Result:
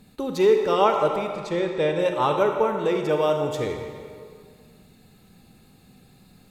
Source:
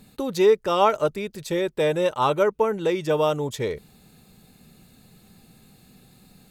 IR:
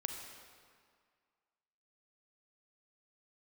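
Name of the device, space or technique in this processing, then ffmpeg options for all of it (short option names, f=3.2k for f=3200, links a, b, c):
swimming-pool hall: -filter_complex "[0:a]asettb=1/sr,asplit=3[a][b][c];[a]atrim=end=1.274[d];[b]atrim=start=1.27:end=1.99,asetpts=PTS-STARTPTS,afade=t=in:d=0.004:c=qsin,afade=t=out:st=0.716:d=0.004:c=qsin,lowpass=6.4k[e];[c]atrim=start=1.986[f];[d][e]acrossfade=d=0.004:c1=hsin:c2=qsin[g];[g][f]acrossfade=d=0.004:c1=qsin:c2=hsin[h];[1:a]atrim=start_sample=2205[i];[h][i]afir=irnorm=-1:irlink=0,highshelf=f=5.5k:g=-5.5"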